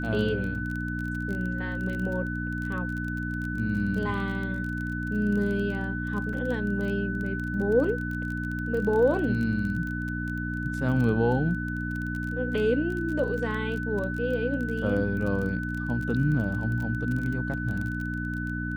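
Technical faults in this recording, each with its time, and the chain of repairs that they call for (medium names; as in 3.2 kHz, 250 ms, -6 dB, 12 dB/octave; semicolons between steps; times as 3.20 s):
crackle 23 per s -32 dBFS
hum 60 Hz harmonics 5 -32 dBFS
whine 1.5 kHz -34 dBFS
6.33 s: dropout 3.4 ms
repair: de-click; band-stop 1.5 kHz, Q 30; de-hum 60 Hz, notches 5; interpolate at 6.33 s, 3.4 ms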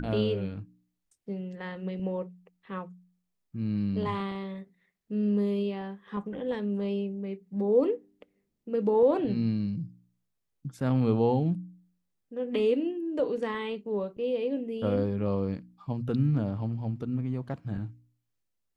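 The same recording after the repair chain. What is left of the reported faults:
nothing left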